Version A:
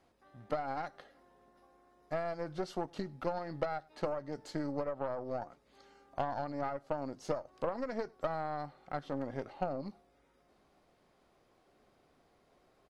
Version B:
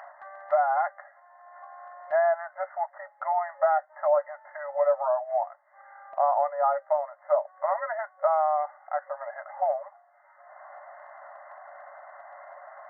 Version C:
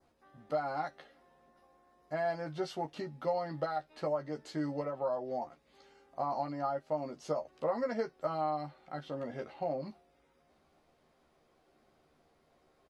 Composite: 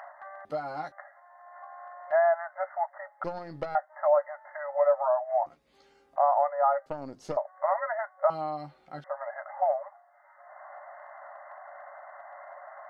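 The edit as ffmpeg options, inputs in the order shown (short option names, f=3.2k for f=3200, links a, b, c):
-filter_complex "[2:a]asplit=3[a][b][c];[0:a]asplit=2[d][e];[1:a]asplit=6[f][g][h][i][j][k];[f]atrim=end=0.452[l];[a]atrim=start=0.448:end=0.922[m];[g]atrim=start=0.918:end=3.242[n];[d]atrim=start=3.238:end=3.752[o];[h]atrim=start=3.748:end=5.462[p];[b]atrim=start=5.458:end=6.162[q];[i]atrim=start=6.158:end=6.862[r];[e]atrim=start=6.858:end=7.372[s];[j]atrim=start=7.368:end=8.302[t];[c]atrim=start=8.298:end=9.042[u];[k]atrim=start=9.038[v];[l][m]acrossfade=d=0.004:c1=hsin:c2=hsin[w];[w][n]acrossfade=d=0.004:c1=hsin:c2=hsin[x];[x][o]acrossfade=d=0.004:c1=hsin:c2=hsin[y];[y][p]acrossfade=d=0.004:c1=hsin:c2=hsin[z];[z][q]acrossfade=d=0.004:c1=hsin:c2=hsin[aa];[aa][r]acrossfade=d=0.004:c1=hsin:c2=hsin[ab];[ab][s]acrossfade=d=0.004:c1=hsin:c2=hsin[ac];[ac][t]acrossfade=d=0.004:c1=hsin:c2=hsin[ad];[ad][u]acrossfade=d=0.004:c1=hsin:c2=hsin[ae];[ae][v]acrossfade=d=0.004:c1=hsin:c2=hsin"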